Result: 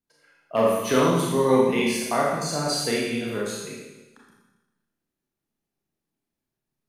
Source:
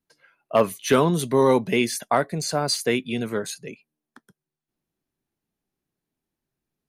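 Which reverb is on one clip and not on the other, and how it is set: Schroeder reverb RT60 1.1 s, combs from 27 ms, DRR -4 dB; trim -6 dB

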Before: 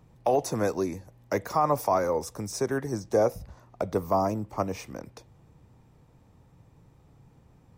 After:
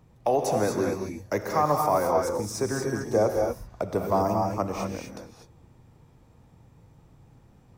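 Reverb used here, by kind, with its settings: gated-style reverb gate 270 ms rising, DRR 1.5 dB

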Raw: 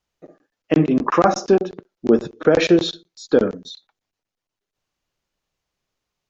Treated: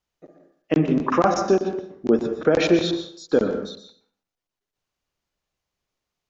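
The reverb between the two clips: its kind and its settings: plate-style reverb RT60 0.56 s, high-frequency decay 0.7×, pre-delay 110 ms, DRR 7 dB; trim -3.5 dB

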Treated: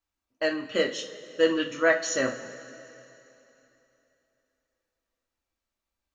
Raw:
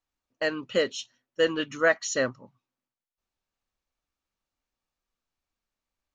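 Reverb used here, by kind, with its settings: two-slope reverb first 0.3 s, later 3.2 s, from -18 dB, DRR 2 dB; trim -1.5 dB

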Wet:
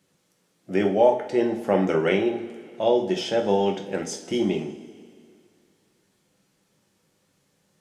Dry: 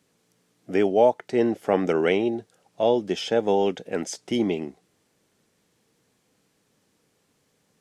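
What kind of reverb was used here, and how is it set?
two-slope reverb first 0.38 s, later 2.3 s, from -17 dB, DRR 1.5 dB; trim -2 dB

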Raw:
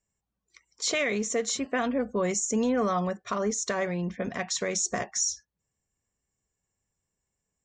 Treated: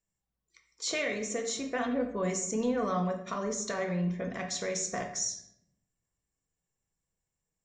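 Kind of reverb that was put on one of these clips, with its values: simulated room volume 170 m³, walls mixed, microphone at 0.66 m; trim -6 dB

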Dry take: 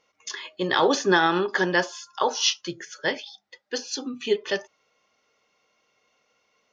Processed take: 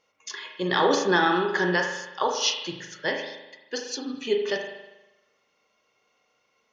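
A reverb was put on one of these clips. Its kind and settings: spring tank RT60 1 s, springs 39 ms, chirp 40 ms, DRR 3 dB; trim -2.5 dB

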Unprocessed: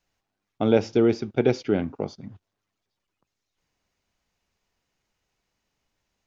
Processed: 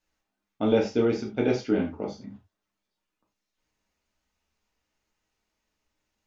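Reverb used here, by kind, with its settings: gated-style reverb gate 120 ms falling, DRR -2.5 dB; trim -6 dB

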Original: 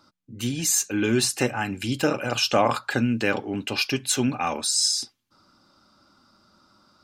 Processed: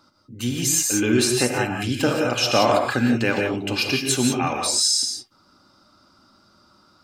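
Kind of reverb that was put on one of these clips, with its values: gated-style reverb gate 200 ms rising, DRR 2 dB; trim +1 dB

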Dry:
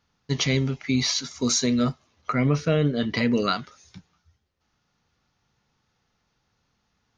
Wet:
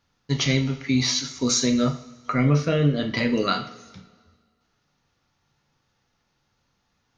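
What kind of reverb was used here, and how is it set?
two-slope reverb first 0.46 s, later 1.8 s, from -18 dB, DRR 4.5 dB

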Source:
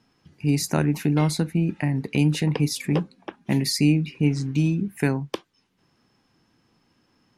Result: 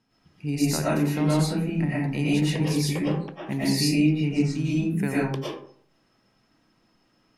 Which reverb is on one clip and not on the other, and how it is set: algorithmic reverb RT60 0.58 s, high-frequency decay 0.5×, pre-delay 75 ms, DRR -7.5 dB; trim -7.5 dB

